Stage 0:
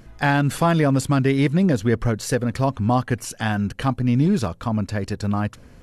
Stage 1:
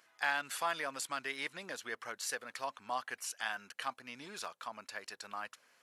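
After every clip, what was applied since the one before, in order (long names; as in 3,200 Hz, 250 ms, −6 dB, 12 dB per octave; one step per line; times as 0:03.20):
high-pass filter 1,100 Hz 12 dB per octave
level −8.5 dB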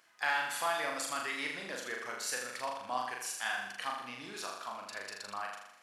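flutter between parallel walls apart 6.9 metres, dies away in 0.8 s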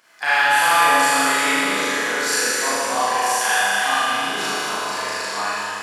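four-comb reverb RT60 3.7 s, combs from 26 ms, DRR −10 dB
level +7.5 dB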